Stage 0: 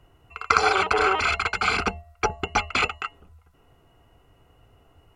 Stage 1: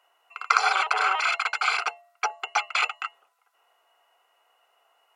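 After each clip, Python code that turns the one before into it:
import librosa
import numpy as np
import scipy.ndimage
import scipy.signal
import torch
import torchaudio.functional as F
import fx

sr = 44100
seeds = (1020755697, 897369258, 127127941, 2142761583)

y = scipy.signal.sosfilt(scipy.signal.butter(4, 670.0, 'highpass', fs=sr, output='sos'), x)
y = y * 10.0 ** (-1.0 / 20.0)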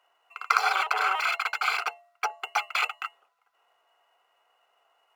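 y = scipy.signal.medfilt(x, 5)
y = y * 10.0 ** (-2.0 / 20.0)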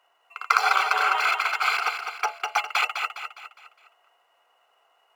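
y = fx.echo_feedback(x, sr, ms=205, feedback_pct=44, wet_db=-7)
y = y * 10.0 ** (2.5 / 20.0)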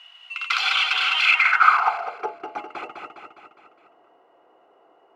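y = fx.power_curve(x, sr, exponent=0.7)
y = fx.filter_sweep_bandpass(y, sr, from_hz=3100.0, to_hz=330.0, start_s=1.23, end_s=2.37, q=3.8)
y = y * 10.0 ** (7.5 / 20.0)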